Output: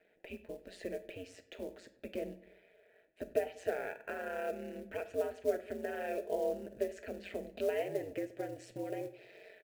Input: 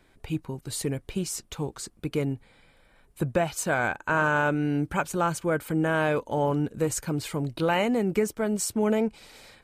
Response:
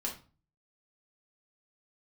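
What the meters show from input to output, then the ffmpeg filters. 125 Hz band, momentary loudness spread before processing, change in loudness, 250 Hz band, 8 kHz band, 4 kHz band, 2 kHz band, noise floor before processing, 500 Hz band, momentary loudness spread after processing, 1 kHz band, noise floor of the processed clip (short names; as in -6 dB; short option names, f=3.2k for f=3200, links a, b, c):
-25.0 dB, 9 LU, -12.0 dB, -17.5 dB, -24.5 dB, -16.5 dB, -17.0 dB, -61 dBFS, -8.0 dB, 14 LU, -16.5 dB, -69 dBFS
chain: -filter_complex "[0:a]highshelf=f=6.6k:g=-11,acompressor=threshold=-28dB:ratio=8,asplit=3[a][b][c];[a]bandpass=f=530:t=q:w=8,volume=0dB[d];[b]bandpass=f=1.84k:t=q:w=8,volume=-6dB[e];[c]bandpass=f=2.48k:t=q:w=8,volume=-9dB[f];[d][e][f]amix=inputs=3:normalize=0,acrusher=bits=6:mode=log:mix=0:aa=0.000001,aeval=exprs='val(0)*sin(2*PI*91*n/s)':c=same,asplit=2[g][h];[h]adelay=97,lowpass=f=3.5k:p=1,volume=-19dB,asplit=2[i][j];[j]adelay=97,lowpass=f=3.5k:p=1,volume=0.49,asplit=2[k][l];[l]adelay=97,lowpass=f=3.5k:p=1,volume=0.49,asplit=2[m][n];[n]adelay=97,lowpass=f=3.5k:p=1,volume=0.49[o];[g][i][k][m][o]amix=inputs=5:normalize=0,asplit=2[p][q];[1:a]atrim=start_sample=2205,asetrate=36162,aresample=44100,highshelf=f=6.2k:g=8[r];[q][r]afir=irnorm=-1:irlink=0,volume=-10.5dB[s];[p][s]amix=inputs=2:normalize=0,volume=6dB"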